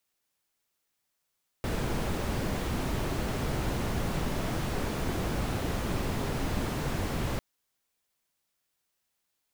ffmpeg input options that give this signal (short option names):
-f lavfi -i "anoisesrc=c=brown:a=0.148:d=5.75:r=44100:seed=1"